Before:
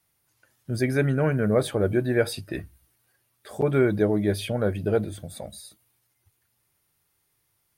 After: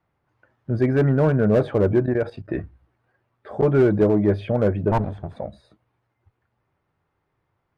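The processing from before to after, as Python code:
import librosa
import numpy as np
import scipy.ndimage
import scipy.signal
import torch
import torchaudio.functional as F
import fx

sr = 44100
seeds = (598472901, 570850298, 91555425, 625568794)

y = fx.lower_of_two(x, sr, delay_ms=1.2, at=(4.91, 5.36))
y = scipy.signal.sosfilt(scipy.signal.butter(2, 1200.0, 'lowpass', fs=sr, output='sos'), y)
y = fx.low_shelf(y, sr, hz=480.0, db=-3.5)
y = fx.level_steps(y, sr, step_db=14, at=(2.06, 2.48))
y = fx.cheby_harmonics(y, sr, harmonics=(5,), levels_db=(-23,), full_scale_db=-11.5)
y = fx.slew_limit(y, sr, full_power_hz=58.0)
y = F.gain(torch.from_numpy(y), 6.0).numpy()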